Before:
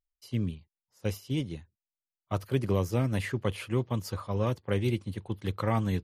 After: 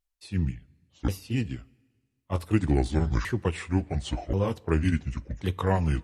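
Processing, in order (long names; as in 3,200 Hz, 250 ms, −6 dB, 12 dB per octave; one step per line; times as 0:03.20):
pitch shifter swept by a sawtooth −10.5 semitones, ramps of 1,083 ms
coupled-rooms reverb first 0.22 s, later 1.6 s, from −18 dB, DRR 17 dB
level +4.5 dB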